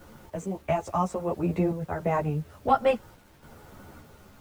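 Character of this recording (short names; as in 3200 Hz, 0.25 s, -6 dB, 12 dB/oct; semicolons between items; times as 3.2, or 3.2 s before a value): random-step tremolo, depth 75%; a quantiser's noise floor 10-bit, dither none; a shimmering, thickened sound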